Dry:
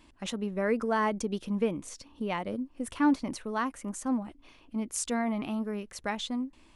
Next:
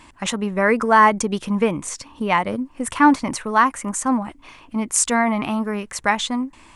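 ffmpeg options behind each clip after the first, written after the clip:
ffmpeg -i in.wav -af "equalizer=frequency=125:width_type=o:width=1:gain=6,equalizer=frequency=1000:width_type=o:width=1:gain=9,equalizer=frequency=2000:width_type=o:width=1:gain=7,equalizer=frequency=8000:width_type=o:width=1:gain=9,volume=7dB" out.wav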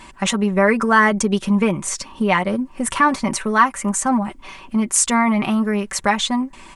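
ffmpeg -i in.wav -filter_complex "[0:a]aecho=1:1:5.2:0.64,asplit=2[link_01][link_02];[link_02]acompressor=threshold=-25dB:ratio=6,volume=1.5dB[link_03];[link_01][link_03]amix=inputs=2:normalize=0,volume=-2dB" out.wav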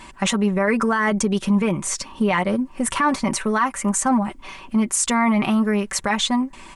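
ffmpeg -i in.wav -af "alimiter=limit=-11dB:level=0:latency=1:release=15" out.wav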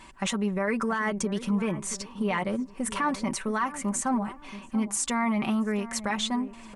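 ffmpeg -i in.wav -filter_complex "[0:a]asplit=2[link_01][link_02];[link_02]adelay=679,lowpass=frequency=950:poles=1,volume=-13dB,asplit=2[link_03][link_04];[link_04]adelay=679,lowpass=frequency=950:poles=1,volume=0.35,asplit=2[link_05][link_06];[link_06]adelay=679,lowpass=frequency=950:poles=1,volume=0.35[link_07];[link_01][link_03][link_05][link_07]amix=inputs=4:normalize=0,volume=-8dB" out.wav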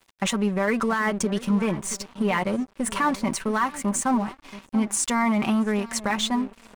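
ffmpeg -i in.wav -af "aeval=exprs='sgn(val(0))*max(abs(val(0))-0.00631,0)':channel_layout=same,volume=5dB" out.wav

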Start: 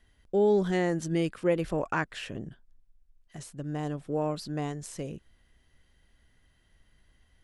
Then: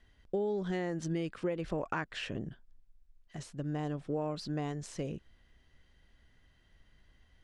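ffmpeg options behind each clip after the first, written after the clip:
ffmpeg -i in.wav -af "lowpass=6200,acompressor=threshold=-30dB:ratio=12" out.wav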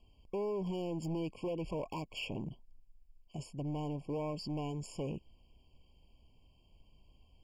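ffmpeg -i in.wav -af "volume=34.5dB,asoftclip=hard,volume=-34.5dB,afftfilt=real='re*eq(mod(floor(b*sr/1024/1100),2),0)':imag='im*eq(mod(floor(b*sr/1024/1100),2),0)':win_size=1024:overlap=0.75,volume=1dB" out.wav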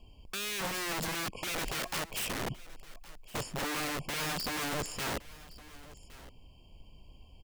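ffmpeg -i in.wav -af "aeval=exprs='(mod(84.1*val(0)+1,2)-1)/84.1':channel_layout=same,aecho=1:1:1115:0.112,volume=9dB" out.wav

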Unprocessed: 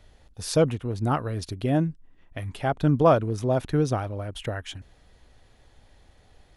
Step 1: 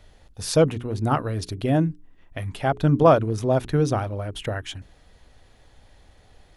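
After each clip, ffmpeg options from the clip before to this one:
ffmpeg -i in.wav -af "bandreject=frequency=60:width_type=h:width=6,bandreject=frequency=120:width_type=h:width=6,bandreject=frequency=180:width_type=h:width=6,bandreject=frequency=240:width_type=h:width=6,bandreject=frequency=300:width_type=h:width=6,bandreject=frequency=360:width_type=h:width=6,bandreject=frequency=420:width_type=h:width=6,volume=3dB" out.wav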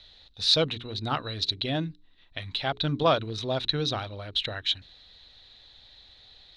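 ffmpeg -i in.wav -af "lowpass=frequency=3900:width_type=q:width=14,tiltshelf=frequency=1300:gain=-5,volume=-5dB" out.wav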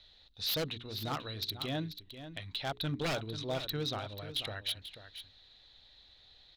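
ffmpeg -i in.wav -filter_complex "[0:a]aeval=exprs='0.0944*(abs(mod(val(0)/0.0944+3,4)-2)-1)':channel_layout=same,asplit=2[link_01][link_02];[link_02]aecho=0:1:488:0.266[link_03];[link_01][link_03]amix=inputs=2:normalize=0,volume=-7dB" out.wav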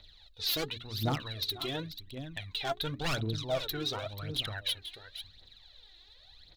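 ffmpeg -i in.wav -af "aphaser=in_gain=1:out_gain=1:delay=3:decay=0.69:speed=0.92:type=triangular" out.wav

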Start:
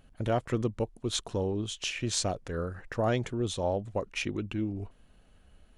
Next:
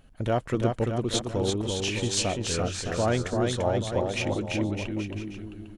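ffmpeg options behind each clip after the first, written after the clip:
ffmpeg -i in.wav -af "aecho=1:1:340|612|829.6|1004|1143:0.631|0.398|0.251|0.158|0.1,volume=2.5dB" out.wav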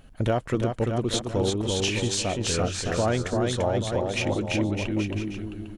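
ffmpeg -i in.wav -af "alimiter=limit=-19.5dB:level=0:latency=1:release=411,volume=5dB" out.wav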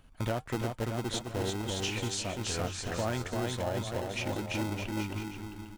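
ffmpeg -i in.wav -filter_complex "[0:a]acrossover=split=420[link_01][link_02];[link_01]acrusher=samples=38:mix=1:aa=0.000001[link_03];[link_03][link_02]amix=inputs=2:normalize=0,flanger=delay=2.5:depth=1:regen=-83:speed=1.5:shape=triangular,volume=-3dB" out.wav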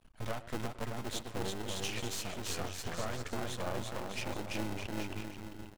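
ffmpeg -i in.wav -filter_complex "[0:a]asplit=2[link_01][link_02];[link_02]adelay=110,highpass=300,lowpass=3400,asoftclip=type=hard:threshold=-28dB,volume=-16dB[link_03];[link_01][link_03]amix=inputs=2:normalize=0,aeval=exprs='max(val(0),0)':channel_layout=same" out.wav

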